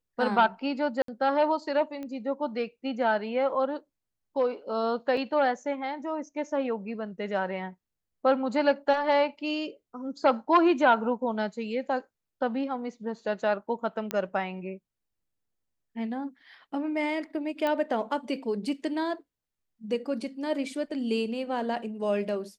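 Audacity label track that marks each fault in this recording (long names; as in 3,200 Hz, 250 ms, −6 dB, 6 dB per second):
1.020000	1.080000	drop-out 63 ms
2.030000	2.030000	click −26 dBFS
5.170000	5.170000	drop-out 2.8 ms
14.110000	14.110000	click −14 dBFS
17.670000	17.670000	click −17 dBFS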